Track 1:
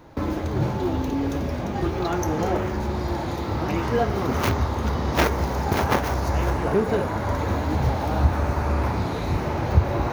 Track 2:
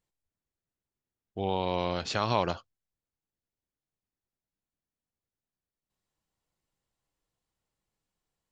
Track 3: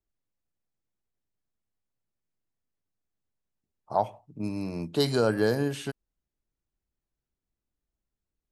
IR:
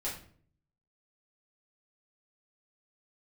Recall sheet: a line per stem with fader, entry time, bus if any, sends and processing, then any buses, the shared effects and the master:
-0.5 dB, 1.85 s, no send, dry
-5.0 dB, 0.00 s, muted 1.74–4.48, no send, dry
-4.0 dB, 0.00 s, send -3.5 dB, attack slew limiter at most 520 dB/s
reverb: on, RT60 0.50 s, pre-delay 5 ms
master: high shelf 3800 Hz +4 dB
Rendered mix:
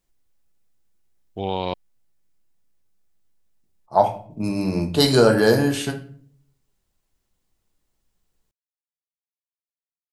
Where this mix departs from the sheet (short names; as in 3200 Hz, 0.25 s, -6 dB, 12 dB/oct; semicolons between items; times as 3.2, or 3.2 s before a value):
stem 1: muted; stem 2 -5.0 dB -> +4.0 dB; stem 3 -4.0 dB -> +5.0 dB